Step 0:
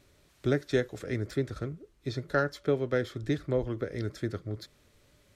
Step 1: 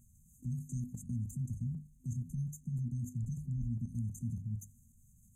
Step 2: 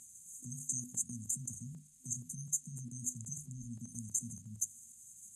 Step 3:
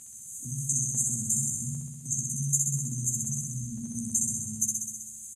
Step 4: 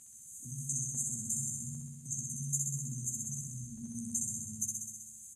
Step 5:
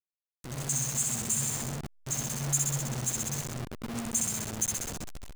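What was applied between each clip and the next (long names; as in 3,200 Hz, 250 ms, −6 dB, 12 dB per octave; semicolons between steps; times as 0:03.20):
brick-wall band-stop 250–6,200 Hz; output level in coarse steps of 14 dB; mains-hum notches 50/100/150/200/250 Hz; level +7.5 dB
meter weighting curve ITU-R 468; level +7 dB
double-tracking delay 14 ms −5.5 dB; on a send: flutter between parallel walls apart 11 metres, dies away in 1.4 s; on the sum: level +7 dB
convolution reverb RT60 0.55 s, pre-delay 108 ms, DRR 10 dB; level −8 dB
hold until the input has moved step −36.5 dBFS; automatic gain control gain up to 7.5 dB; level −1.5 dB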